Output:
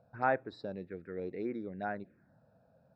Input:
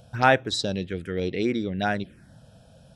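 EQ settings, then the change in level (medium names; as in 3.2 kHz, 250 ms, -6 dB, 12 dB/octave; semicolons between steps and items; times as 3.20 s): boxcar filter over 14 samples; high-pass 340 Hz 6 dB/octave; distance through air 150 m; -8.0 dB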